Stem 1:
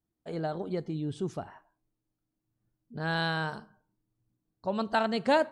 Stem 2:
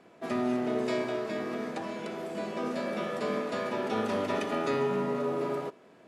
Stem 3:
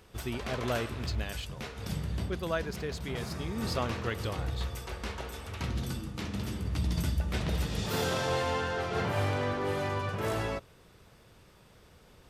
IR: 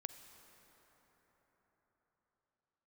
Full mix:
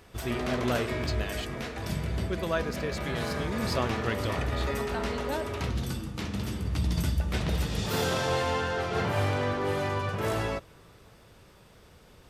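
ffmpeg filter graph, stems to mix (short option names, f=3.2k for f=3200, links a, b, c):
-filter_complex "[0:a]volume=-10dB[a];[1:a]equalizer=f=2k:w=2.2:g=8,volume=-5.5dB[b];[2:a]volume=1.5dB,asplit=2[c][d];[d]volume=-14dB[e];[3:a]atrim=start_sample=2205[f];[e][f]afir=irnorm=-1:irlink=0[g];[a][b][c][g]amix=inputs=4:normalize=0"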